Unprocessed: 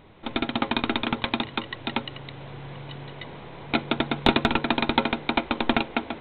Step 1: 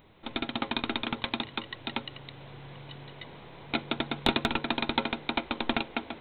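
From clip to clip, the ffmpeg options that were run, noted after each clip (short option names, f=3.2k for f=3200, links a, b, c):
-af "aemphasis=mode=production:type=50kf,volume=-7dB"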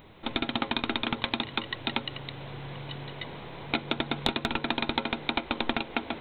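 -af "acompressor=threshold=-30dB:ratio=6,volume=6dB"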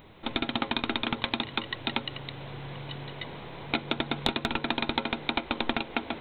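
-af anull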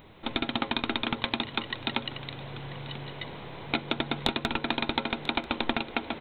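-af "aecho=1:1:990:0.133"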